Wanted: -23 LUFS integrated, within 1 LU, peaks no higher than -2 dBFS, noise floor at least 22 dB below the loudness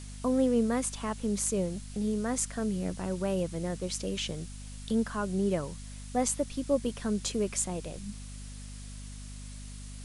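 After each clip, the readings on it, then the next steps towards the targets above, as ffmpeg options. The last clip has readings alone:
hum 50 Hz; highest harmonic 250 Hz; hum level -41 dBFS; noise floor -43 dBFS; noise floor target -54 dBFS; loudness -31.5 LUFS; peak level -14.0 dBFS; loudness target -23.0 LUFS
-> -af "bandreject=f=50:t=h:w=4,bandreject=f=100:t=h:w=4,bandreject=f=150:t=h:w=4,bandreject=f=200:t=h:w=4,bandreject=f=250:t=h:w=4"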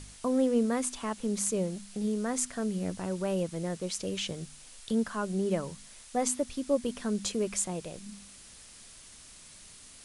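hum not found; noise floor -52 dBFS; noise floor target -54 dBFS
-> -af "afftdn=nr=6:nf=-52"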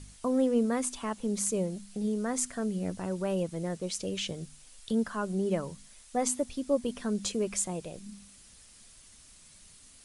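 noise floor -56 dBFS; loudness -31.5 LUFS; peak level -14.5 dBFS; loudness target -23.0 LUFS
-> -af "volume=2.66"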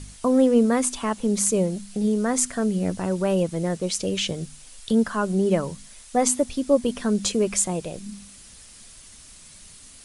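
loudness -23.0 LUFS; peak level -6.0 dBFS; noise floor -47 dBFS

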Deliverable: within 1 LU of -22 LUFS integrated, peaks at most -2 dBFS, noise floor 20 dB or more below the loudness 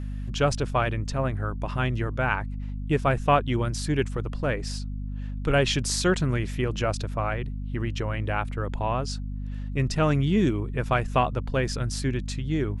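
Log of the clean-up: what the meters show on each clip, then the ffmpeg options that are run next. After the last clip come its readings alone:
hum 50 Hz; highest harmonic 250 Hz; hum level -29 dBFS; loudness -27.0 LUFS; peak level -8.0 dBFS; loudness target -22.0 LUFS
-> -af "bandreject=f=50:t=h:w=4,bandreject=f=100:t=h:w=4,bandreject=f=150:t=h:w=4,bandreject=f=200:t=h:w=4,bandreject=f=250:t=h:w=4"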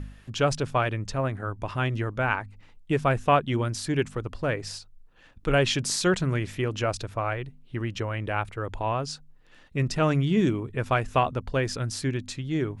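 hum not found; loudness -27.5 LUFS; peak level -8.5 dBFS; loudness target -22.0 LUFS
-> -af "volume=1.88"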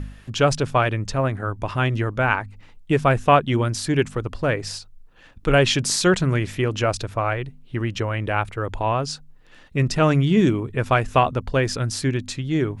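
loudness -22.0 LUFS; peak level -3.0 dBFS; noise floor -48 dBFS

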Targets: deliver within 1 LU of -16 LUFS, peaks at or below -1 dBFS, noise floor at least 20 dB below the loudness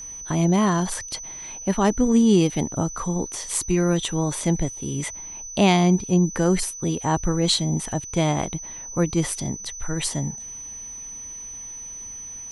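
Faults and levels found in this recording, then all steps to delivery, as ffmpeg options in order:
steady tone 6 kHz; tone level -34 dBFS; loudness -23.0 LUFS; peak level -3.0 dBFS; loudness target -16.0 LUFS
-> -af "bandreject=f=6000:w=30"
-af "volume=2.24,alimiter=limit=0.891:level=0:latency=1"

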